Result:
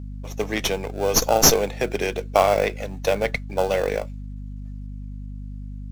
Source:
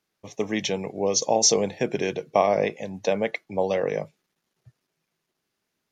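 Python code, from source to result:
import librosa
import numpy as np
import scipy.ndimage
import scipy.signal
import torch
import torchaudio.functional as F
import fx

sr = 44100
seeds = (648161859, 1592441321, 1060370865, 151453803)

p1 = fx.highpass(x, sr, hz=660.0, slope=6)
p2 = fx.peak_eq(p1, sr, hz=7800.0, db=7.0, octaves=0.34)
p3 = fx.sample_hold(p2, sr, seeds[0], rate_hz=2000.0, jitter_pct=0)
p4 = p2 + F.gain(torch.from_numpy(p3), -9.5).numpy()
p5 = fx.add_hum(p4, sr, base_hz=50, snr_db=10)
p6 = fx.running_max(p5, sr, window=3)
y = F.gain(torch.from_numpy(p6), 4.5).numpy()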